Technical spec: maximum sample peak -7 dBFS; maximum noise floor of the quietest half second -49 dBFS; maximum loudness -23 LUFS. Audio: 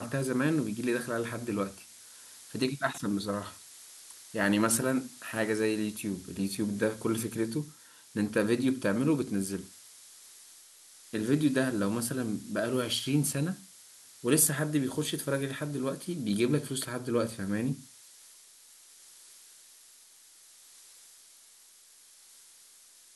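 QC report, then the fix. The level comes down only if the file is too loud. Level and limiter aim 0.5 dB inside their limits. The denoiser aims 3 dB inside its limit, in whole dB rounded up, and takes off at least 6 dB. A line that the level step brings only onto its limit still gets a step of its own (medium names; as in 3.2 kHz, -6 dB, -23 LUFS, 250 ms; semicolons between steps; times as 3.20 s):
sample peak -11.0 dBFS: pass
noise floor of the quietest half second -57 dBFS: pass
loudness -30.5 LUFS: pass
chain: none needed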